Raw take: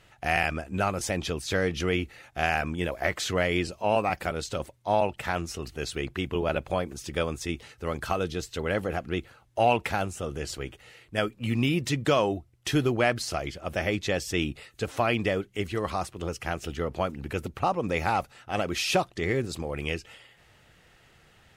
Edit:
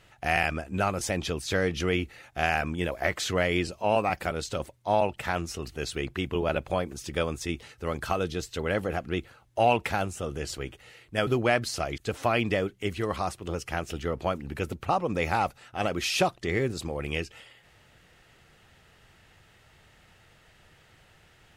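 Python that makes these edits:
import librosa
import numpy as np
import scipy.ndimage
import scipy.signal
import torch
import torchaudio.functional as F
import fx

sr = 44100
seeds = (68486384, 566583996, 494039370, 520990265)

y = fx.edit(x, sr, fx.cut(start_s=11.27, length_s=1.54),
    fx.cut(start_s=13.52, length_s=1.2), tone=tone)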